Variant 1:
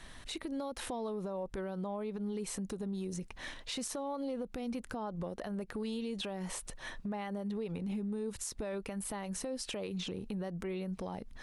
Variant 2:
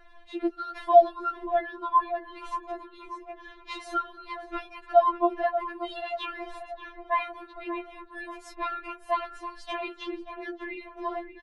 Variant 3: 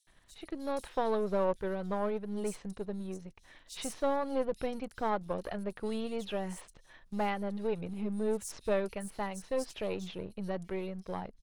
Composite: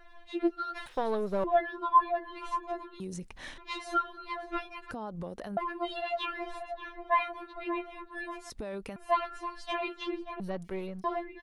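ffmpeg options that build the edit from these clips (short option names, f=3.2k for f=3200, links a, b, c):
-filter_complex "[2:a]asplit=2[a][b];[0:a]asplit=3[c][d][e];[1:a]asplit=6[f][g][h][i][j][k];[f]atrim=end=0.862[l];[a]atrim=start=0.858:end=1.442[m];[g]atrim=start=1.438:end=3.002[n];[c]atrim=start=2.998:end=3.582[o];[h]atrim=start=3.578:end=4.912[p];[d]atrim=start=4.908:end=5.572[q];[i]atrim=start=5.568:end=8.502[r];[e]atrim=start=8.498:end=8.962[s];[j]atrim=start=8.958:end=10.402[t];[b]atrim=start=10.398:end=11.042[u];[k]atrim=start=11.038[v];[l][m]acrossfade=d=0.004:c1=hsin:c2=hsin[w];[w][n]acrossfade=d=0.004:c1=hsin:c2=hsin[x];[x][o]acrossfade=d=0.004:c1=hsin:c2=hsin[y];[y][p]acrossfade=d=0.004:c1=hsin:c2=hsin[z];[z][q]acrossfade=d=0.004:c1=hsin:c2=hsin[aa];[aa][r]acrossfade=d=0.004:c1=hsin:c2=hsin[ab];[ab][s]acrossfade=d=0.004:c1=hsin:c2=hsin[ac];[ac][t]acrossfade=d=0.004:c1=hsin:c2=hsin[ad];[ad][u]acrossfade=d=0.004:c1=hsin:c2=hsin[ae];[ae][v]acrossfade=d=0.004:c1=hsin:c2=hsin"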